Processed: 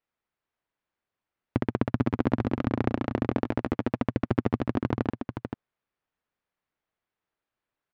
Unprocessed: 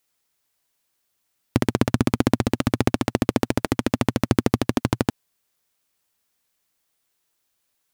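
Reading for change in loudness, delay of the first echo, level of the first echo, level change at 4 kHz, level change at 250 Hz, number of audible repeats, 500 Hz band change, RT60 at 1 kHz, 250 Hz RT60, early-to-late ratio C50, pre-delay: -6.0 dB, 0.441 s, -7.0 dB, -15.5 dB, -5.0 dB, 1, -5.0 dB, none, none, none, none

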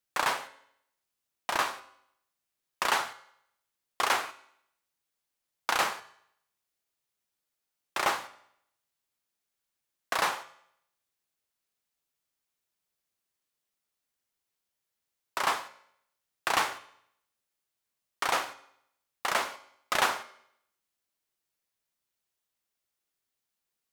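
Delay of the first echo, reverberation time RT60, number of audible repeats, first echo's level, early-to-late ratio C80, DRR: none, 0.70 s, none, none, 18.5 dB, 11.5 dB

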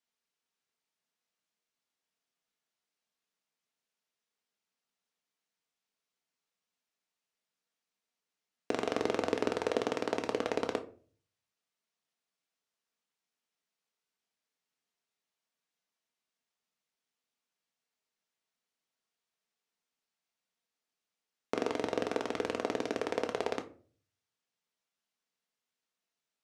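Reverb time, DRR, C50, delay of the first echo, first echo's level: 0.40 s, 5.0 dB, 15.0 dB, none, none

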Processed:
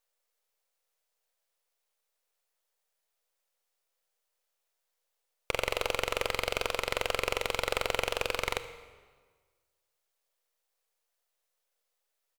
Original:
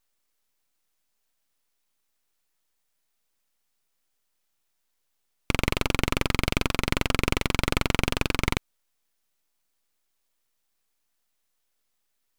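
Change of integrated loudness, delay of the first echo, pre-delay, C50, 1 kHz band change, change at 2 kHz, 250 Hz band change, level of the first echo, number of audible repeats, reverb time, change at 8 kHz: -5.0 dB, 74 ms, 27 ms, 12.0 dB, -2.5 dB, -4.0 dB, -17.5 dB, -19.0 dB, 1, 1.5 s, -4.5 dB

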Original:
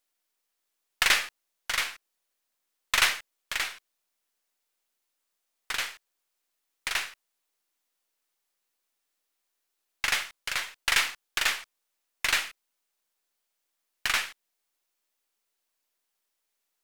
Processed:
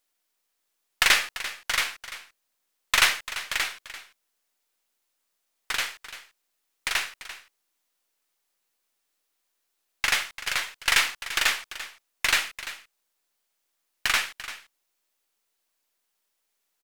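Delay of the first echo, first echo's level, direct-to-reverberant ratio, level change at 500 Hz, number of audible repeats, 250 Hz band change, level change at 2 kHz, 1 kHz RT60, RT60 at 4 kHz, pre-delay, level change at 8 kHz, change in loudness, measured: 0.342 s, -14.0 dB, none, +3.0 dB, 1, +3.0 dB, +3.0 dB, none, none, none, +3.0 dB, +3.0 dB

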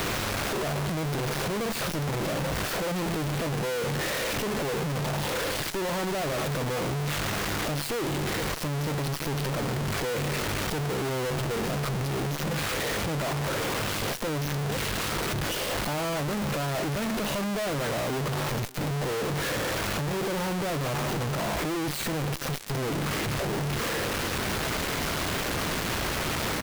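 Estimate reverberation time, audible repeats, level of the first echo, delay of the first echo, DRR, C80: none, 1, -23.0 dB, 0.592 s, none, none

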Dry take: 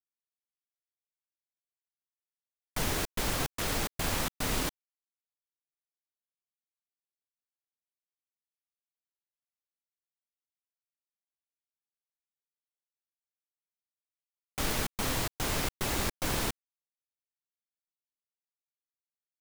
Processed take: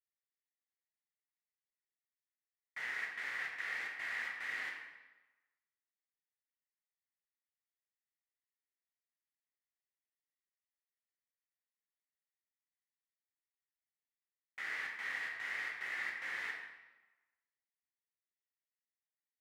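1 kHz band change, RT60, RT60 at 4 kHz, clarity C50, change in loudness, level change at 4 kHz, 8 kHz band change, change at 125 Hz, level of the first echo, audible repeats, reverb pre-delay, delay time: -13.5 dB, 1.2 s, 0.90 s, 3.0 dB, -7.5 dB, -15.0 dB, -25.0 dB, under -35 dB, none, none, 9 ms, none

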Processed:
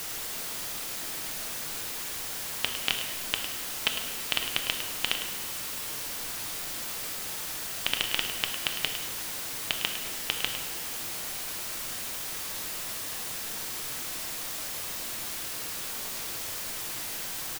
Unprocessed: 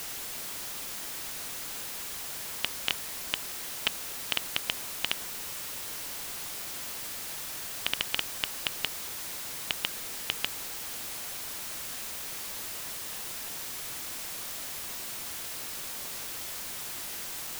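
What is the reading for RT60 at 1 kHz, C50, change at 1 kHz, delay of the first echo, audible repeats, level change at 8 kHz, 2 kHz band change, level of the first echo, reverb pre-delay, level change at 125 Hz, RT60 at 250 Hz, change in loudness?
1.3 s, 5.5 dB, +3.0 dB, 0.105 s, 1, +2.5 dB, +3.0 dB, -10.5 dB, 6 ms, +3.5 dB, 2.5 s, +2.5 dB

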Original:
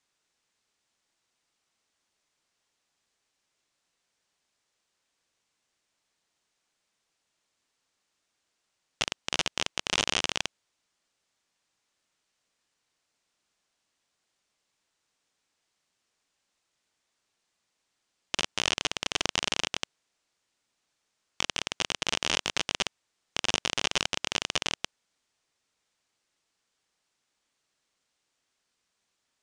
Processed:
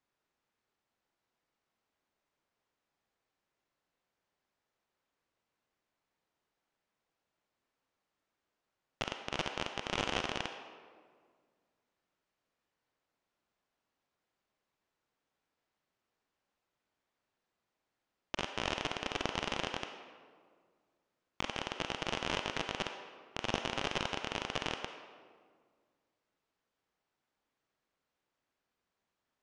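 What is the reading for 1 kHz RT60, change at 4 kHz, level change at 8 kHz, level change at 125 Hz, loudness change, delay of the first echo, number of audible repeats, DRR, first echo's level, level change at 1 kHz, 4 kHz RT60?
1.7 s, -10.0 dB, -15.5 dB, -1.0 dB, -8.0 dB, none, none, 5.0 dB, none, -2.5 dB, 1.1 s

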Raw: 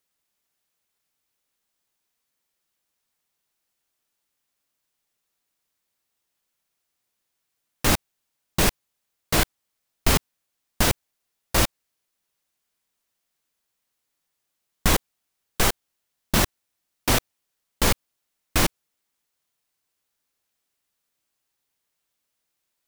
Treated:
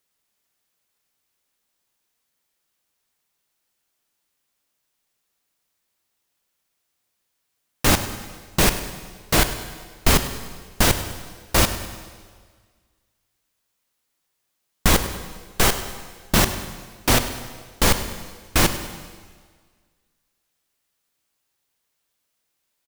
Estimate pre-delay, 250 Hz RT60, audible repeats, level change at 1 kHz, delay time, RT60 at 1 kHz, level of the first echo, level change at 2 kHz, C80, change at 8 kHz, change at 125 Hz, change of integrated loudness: 15 ms, 1.6 s, 4, +3.5 dB, 0.101 s, 1.6 s, -14.5 dB, +3.5 dB, 10.5 dB, +3.5 dB, +3.5 dB, +2.5 dB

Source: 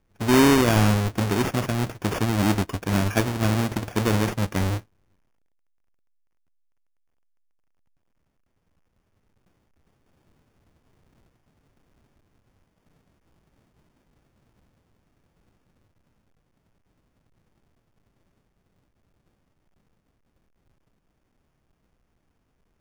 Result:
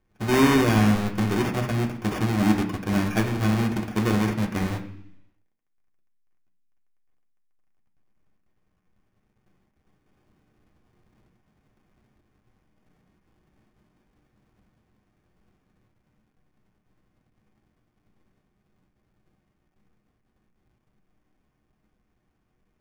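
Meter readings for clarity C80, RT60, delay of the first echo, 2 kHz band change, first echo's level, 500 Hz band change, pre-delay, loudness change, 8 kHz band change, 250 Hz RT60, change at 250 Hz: 13.0 dB, 0.70 s, none, -1.0 dB, none, -2.0 dB, 3 ms, -1.0 dB, -5.0 dB, 0.85 s, +0.5 dB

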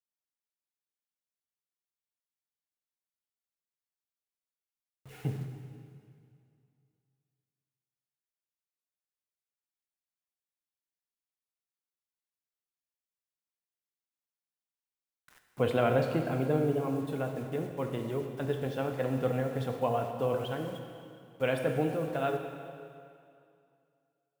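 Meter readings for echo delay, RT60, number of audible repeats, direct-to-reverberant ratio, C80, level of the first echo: none, 2.4 s, none, 4.0 dB, 6.5 dB, none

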